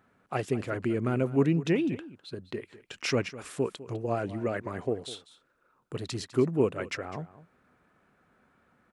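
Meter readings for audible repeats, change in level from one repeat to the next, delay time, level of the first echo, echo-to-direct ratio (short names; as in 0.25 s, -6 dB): 1, no steady repeat, 0.203 s, -16.5 dB, -16.5 dB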